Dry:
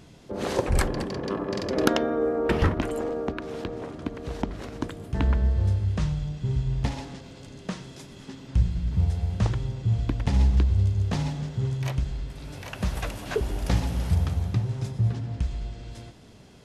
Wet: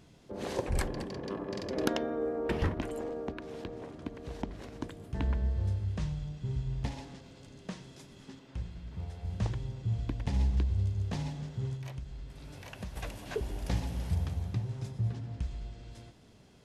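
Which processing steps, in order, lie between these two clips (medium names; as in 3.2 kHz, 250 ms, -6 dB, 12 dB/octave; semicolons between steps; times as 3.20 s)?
8.39–9.25 s: tone controls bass -9 dB, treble -5 dB; 11.75–12.96 s: compression 2.5:1, threshold -32 dBFS, peak gain reduction 8 dB; dynamic bell 1.3 kHz, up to -5 dB, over -54 dBFS, Q 5.1; trim -8 dB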